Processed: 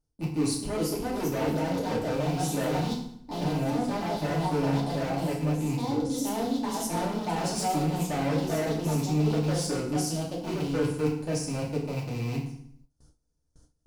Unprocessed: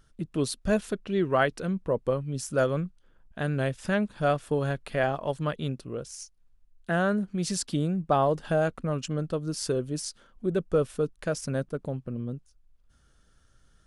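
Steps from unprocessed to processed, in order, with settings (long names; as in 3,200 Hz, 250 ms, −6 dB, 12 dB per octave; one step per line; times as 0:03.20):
loose part that buzzes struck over −35 dBFS, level −18 dBFS
delay with pitch and tempo change per echo 451 ms, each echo +3 semitones, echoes 2
in parallel at −6 dB: slack as between gear wheels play −36.5 dBFS
on the sum: flat-topped bell 2,100 Hz −16 dB
hard clipping −22.5 dBFS, distortion −8 dB
reversed playback
downward compressor 5 to 1, threshold −35 dBFS, peak gain reduction 10 dB
reversed playback
feedback delay network reverb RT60 0.65 s, low-frequency decay 1.35×, high-frequency decay 0.9×, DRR −5 dB
noise gate with hold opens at −45 dBFS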